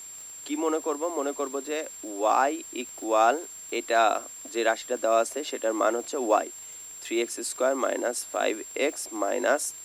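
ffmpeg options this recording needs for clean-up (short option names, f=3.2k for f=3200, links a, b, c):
-af "adeclick=t=4,bandreject=f=7.4k:w=30,afwtdn=0.0025"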